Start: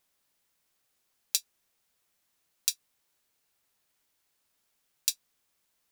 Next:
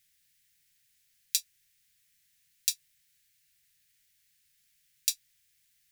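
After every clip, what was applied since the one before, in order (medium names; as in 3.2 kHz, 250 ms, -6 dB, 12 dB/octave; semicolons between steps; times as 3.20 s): elliptic band-stop 160–1800 Hz; peak limiter -10 dBFS, peak gain reduction 6 dB; trim +6 dB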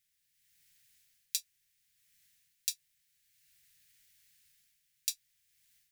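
level rider gain up to 12 dB; trim -9 dB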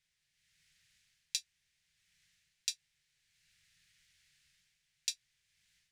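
distance through air 80 m; trim +4 dB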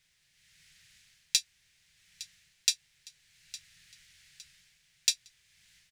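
in parallel at -11 dB: wavefolder -26.5 dBFS; on the sum: feedback delay 860 ms, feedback 41%, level -17.5 dB; trim +8.5 dB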